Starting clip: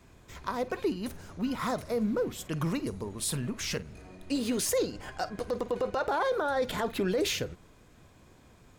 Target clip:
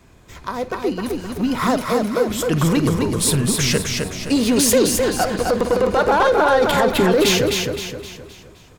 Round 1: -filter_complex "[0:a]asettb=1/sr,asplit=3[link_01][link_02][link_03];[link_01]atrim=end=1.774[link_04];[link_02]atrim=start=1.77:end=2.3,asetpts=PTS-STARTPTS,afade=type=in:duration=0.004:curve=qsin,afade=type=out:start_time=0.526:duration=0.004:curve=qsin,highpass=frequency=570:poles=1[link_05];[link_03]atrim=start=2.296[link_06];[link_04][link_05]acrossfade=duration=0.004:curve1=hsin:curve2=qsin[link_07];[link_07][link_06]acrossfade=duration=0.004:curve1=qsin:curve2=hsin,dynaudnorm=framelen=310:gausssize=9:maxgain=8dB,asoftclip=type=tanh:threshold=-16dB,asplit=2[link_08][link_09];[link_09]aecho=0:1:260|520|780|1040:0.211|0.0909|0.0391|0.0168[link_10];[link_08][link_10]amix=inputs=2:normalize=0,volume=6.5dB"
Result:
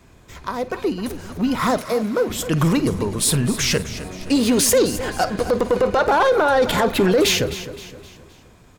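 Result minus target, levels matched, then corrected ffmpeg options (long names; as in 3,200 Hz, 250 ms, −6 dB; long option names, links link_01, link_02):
echo-to-direct −9.5 dB
-filter_complex "[0:a]asettb=1/sr,asplit=3[link_01][link_02][link_03];[link_01]atrim=end=1.774[link_04];[link_02]atrim=start=1.77:end=2.3,asetpts=PTS-STARTPTS,afade=type=in:duration=0.004:curve=qsin,afade=type=out:start_time=0.526:duration=0.004:curve=qsin,highpass=frequency=570:poles=1[link_05];[link_03]atrim=start=2.296[link_06];[link_04][link_05]acrossfade=duration=0.004:curve1=hsin:curve2=qsin[link_07];[link_07][link_06]acrossfade=duration=0.004:curve1=qsin:curve2=hsin,dynaudnorm=framelen=310:gausssize=9:maxgain=8dB,asoftclip=type=tanh:threshold=-16dB,asplit=2[link_08][link_09];[link_09]aecho=0:1:260|520|780|1040|1300:0.631|0.271|0.117|0.0502|0.0216[link_10];[link_08][link_10]amix=inputs=2:normalize=0,volume=6.5dB"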